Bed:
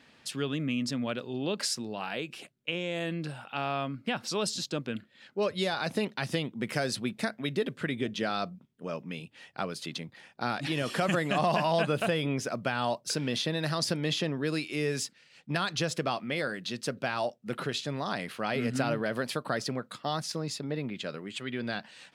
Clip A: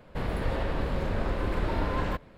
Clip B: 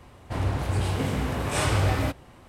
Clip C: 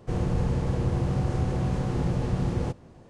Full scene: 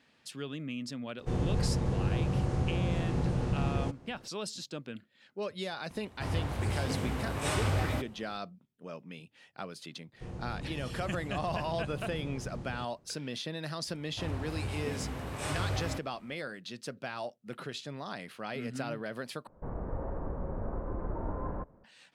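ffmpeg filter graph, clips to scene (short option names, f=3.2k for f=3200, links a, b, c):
-filter_complex "[3:a]asplit=2[a][b];[2:a]asplit=2[c][d];[0:a]volume=-7.5dB[e];[1:a]lowpass=f=1.2k:w=0.5412,lowpass=f=1.2k:w=1.3066[f];[e]asplit=2[g][h];[g]atrim=end=19.474[i];[f]atrim=end=2.37,asetpts=PTS-STARTPTS,volume=-7dB[j];[h]atrim=start=21.836[k];[a]atrim=end=3.09,asetpts=PTS-STARTPTS,volume=-4dB,afade=t=in:d=0.004:c=hsin,afade=t=out:st=3.086:d=0.004:c=hsin,adelay=1190[l];[c]atrim=end=2.48,asetpts=PTS-STARTPTS,volume=-6.5dB,afade=t=in:d=0.004:c=hsin,afade=t=out:st=2.476:d=0.004:c=hsin,adelay=5900[m];[b]atrim=end=3.09,asetpts=PTS-STARTPTS,volume=-15dB,afade=t=in:d=0.004:c=hsin,afade=t=out:st=3.086:d=0.004:c=hsin,adelay=10130[n];[d]atrim=end=2.48,asetpts=PTS-STARTPTS,volume=-10.5dB,afade=t=in:d=0.004:c=hsin,afade=t=out:st=2.476:d=0.004:c=hsin,adelay=13870[o];[i][j]acrossfade=d=0.004:c1=hsin:c2=hsin[p];[p][k]acrossfade=d=0.004:c1=hsin:c2=hsin[q];[q][l][m][n][o]amix=inputs=5:normalize=0"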